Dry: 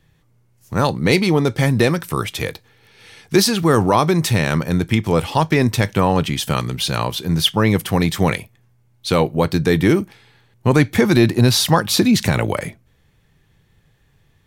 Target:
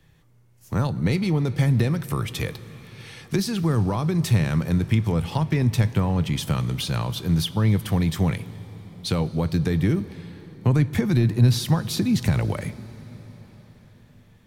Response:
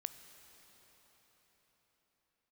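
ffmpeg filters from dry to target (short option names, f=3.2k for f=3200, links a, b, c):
-filter_complex "[0:a]acrossover=split=180[a][b];[b]acompressor=threshold=-29dB:ratio=4[c];[a][c]amix=inputs=2:normalize=0,asplit=2[d][e];[1:a]atrim=start_sample=2205[f];[e][f]afir=irnorm=-1:irlink=0,volume=2.5dB[g];[d][g]amix=inputs=2:normalize=0,volume=-5.5dB"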